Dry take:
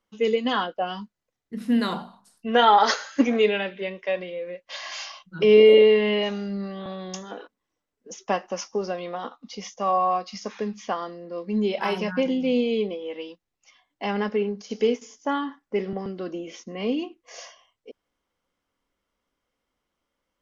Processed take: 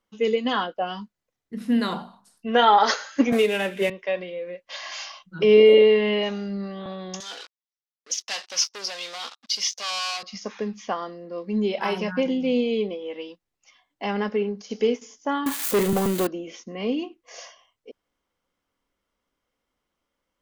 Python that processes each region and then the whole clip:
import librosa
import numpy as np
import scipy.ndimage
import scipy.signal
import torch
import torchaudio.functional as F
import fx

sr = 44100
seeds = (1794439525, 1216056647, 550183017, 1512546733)

y = fx.chain(x, sr, fx.cvsd(bps=64000),
    fx.quant_float(bits=6),
    fx.band_squash(depth_pct=100), at=(3.32, 3.9))
y = fx.chain(y, sr, fx.leveller(passes=5),
    fx.bandpass_q(hz=4700.0, q=1.9), at=(7.2, 10.23))
y = fx.chain(y, sr, fx.crossing_spikes(level_db=-24.5),
    fx.peak_eq(hz=5300.0, db=-5.0, octaves=0.24),
    fx.leveller(passes=3), at=(15.46, 16.27))